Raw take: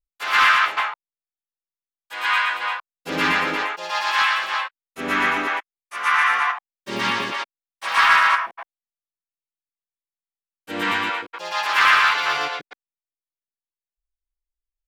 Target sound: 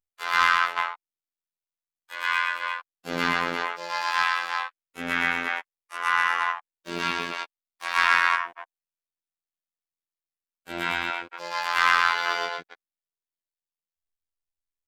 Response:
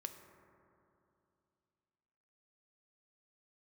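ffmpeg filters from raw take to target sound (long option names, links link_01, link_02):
-af "asoftclip=type=tanh:threshold=-7.5dB,afftfilt=real='hypot(re,im)*cos(PI*b)':imag='0':win_size=2048:overlap=0.75,volume=-1dB"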